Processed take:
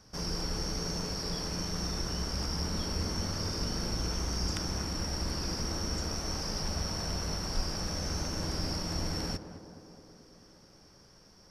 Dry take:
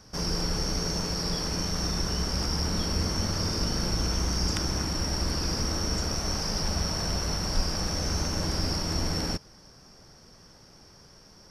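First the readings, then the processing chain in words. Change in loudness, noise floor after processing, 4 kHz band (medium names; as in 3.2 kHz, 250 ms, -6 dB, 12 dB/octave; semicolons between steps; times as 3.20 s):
-5.5 dB, -58 dBFS, -5.5 dB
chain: tape echo 216 ms, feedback 79%, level -9 dB, low-pass 1.1 kHz; trim -5.5 dB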